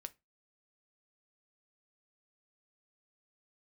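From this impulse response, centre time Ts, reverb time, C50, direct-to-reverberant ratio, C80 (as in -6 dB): 2 ms, 0.20 s, 23.5 dB, 10.0 dB, 33.5 dB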